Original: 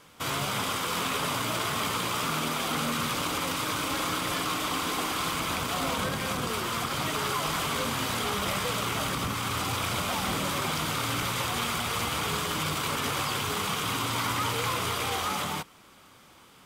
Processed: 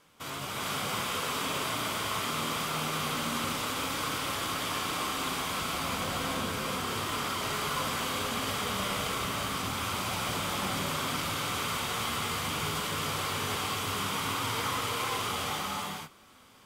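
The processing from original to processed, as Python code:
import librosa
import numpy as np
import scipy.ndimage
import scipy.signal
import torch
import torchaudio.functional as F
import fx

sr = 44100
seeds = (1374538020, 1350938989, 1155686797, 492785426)

y = fx.hum_notches(x, sr, base_hz=60, count=2)
y = fx.rev_gated(y, sr, seeds[0], gate_ms=470, shape='rising', drr_db=-4.0)
y = y * librosa.db_to_amplitude(-8.0)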